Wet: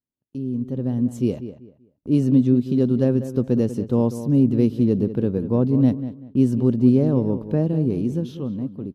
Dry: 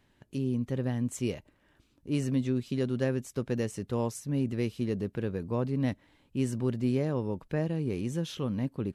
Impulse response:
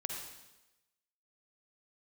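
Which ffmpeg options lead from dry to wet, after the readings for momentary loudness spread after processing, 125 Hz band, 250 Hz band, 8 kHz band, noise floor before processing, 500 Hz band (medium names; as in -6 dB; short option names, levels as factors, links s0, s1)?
11 LU, +9.5 dB, +12.5 dB, no reading, -68 dBFS, +9.0 dB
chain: -filter_complex "[0:a]equalizer=f=125:t=o:w=1:g=4,equalizer=f=250:t=o:w=1:g=8,equalizer=f=500:t=o:w=1:g=3,equalizer=f=2000:t=o:w=1:g=-11,equalizer=f=8000:t=o:w=1:g=-9,dynaudnorm=f=230:g=9:m=5.62,agate=range=0.0447:threshold=0.0126:ratio=16:detection=peak,asplit=2[s0][s1];[s1]adelay=193,lowpass=f=2700:p=1,volume=0.251,asplit=2[s2][s3];[s3]adelay=193,lowpass=f=2700:p=1,volume=0.26,asplit=2[s4][s5];[s5]adelay=193,lowpass=f=2700:p=1,volume=0.26[s6];[s2][s4][s6]amix=inputs=3:normalize=0[s7];[s0][s7]amix=inputs=2:normalize=0,volume=0.531"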